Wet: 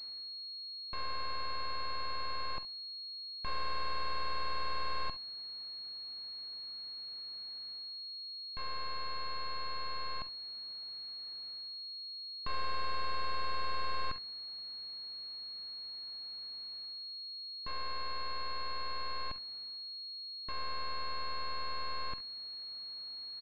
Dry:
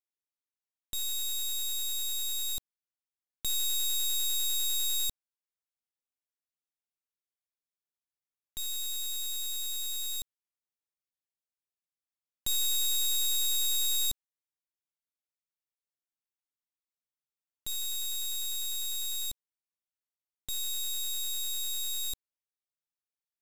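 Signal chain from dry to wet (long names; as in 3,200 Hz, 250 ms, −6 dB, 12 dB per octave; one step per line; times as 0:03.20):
reversed playback
upward compression, threshold −36 dBFS
reversed playback
ambience of single reflections 47 ms −14.5 dB, 67 ms −18 dB
switching amplifier with a slow clock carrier 4,300 Hz
level −2.5 dB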